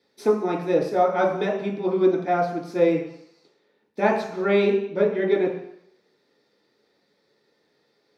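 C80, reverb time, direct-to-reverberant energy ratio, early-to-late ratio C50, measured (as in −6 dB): 8.5 dB, 0.70 s, −4.0 dB, 5.0 dB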